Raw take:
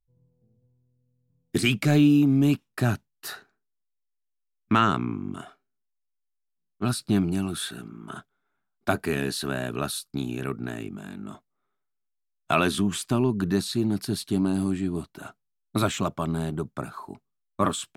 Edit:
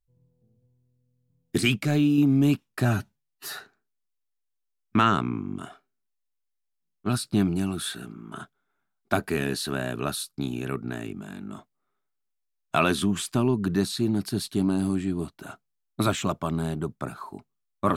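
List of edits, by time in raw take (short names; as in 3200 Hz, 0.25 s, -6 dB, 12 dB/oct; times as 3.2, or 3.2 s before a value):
1.76–2.18 gain -3.5 dB
2.85–3.33 stretch 1.5×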